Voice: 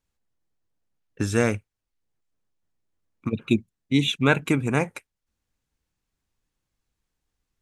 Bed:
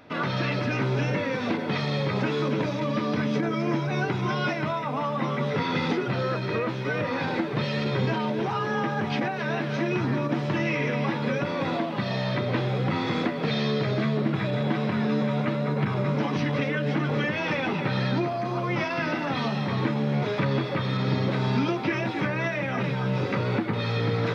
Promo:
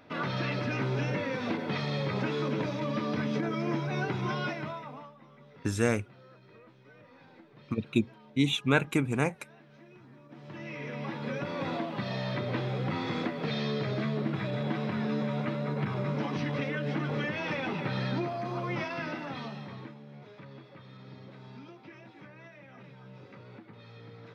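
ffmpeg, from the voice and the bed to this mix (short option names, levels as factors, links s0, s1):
-filter_complex "[0:a]adelay=4450,volume=0.562[s0];[1:a]volume=7.08,afade=t=out:st=4.31:d=0.84:silence=0.0707946,afade=t=in:st=10.26:d=1.38:silence=0.0794328,afade=t=out:st=18.7:d=1.29:silence=0.133352[s1];[s0][s1]amix=inputs=2:normalize=0"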